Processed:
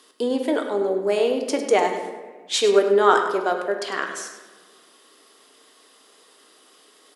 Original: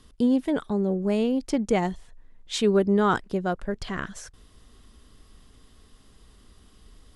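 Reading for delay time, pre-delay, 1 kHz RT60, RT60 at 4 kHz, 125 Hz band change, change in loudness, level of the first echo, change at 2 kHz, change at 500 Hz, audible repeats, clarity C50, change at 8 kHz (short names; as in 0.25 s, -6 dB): 0.101 s, 3 ms, 1.3 s, 0.80 s, under -10 dB, +4.0 dB, -11.0 dB, +7.0 dB, +6.5 dB, 1, 5.5 dB, +8.0 dB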